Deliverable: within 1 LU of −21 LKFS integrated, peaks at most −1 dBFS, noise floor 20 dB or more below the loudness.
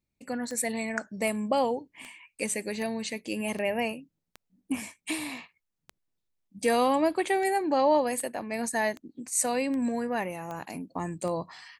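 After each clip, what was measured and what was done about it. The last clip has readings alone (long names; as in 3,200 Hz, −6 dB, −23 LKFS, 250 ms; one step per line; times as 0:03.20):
number of clicks 15; integrated loudness −29.5 LKFS; sample peak −13.0 dBFS; target loudness −21.0 LKFS
→ click removal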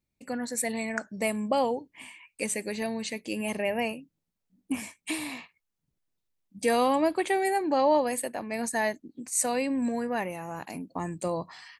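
number of clicks 0; integrated loudness −29.5 LKFS; sample peak −13.0 dBFS; target loudness −21.0 LKFS
→ level +8.5 dB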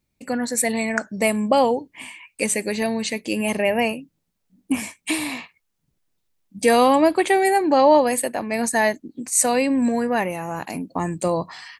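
integrated loudness −21.0 LKFS; sample peak −4.5 dBFS; background noise floor −74 dBFS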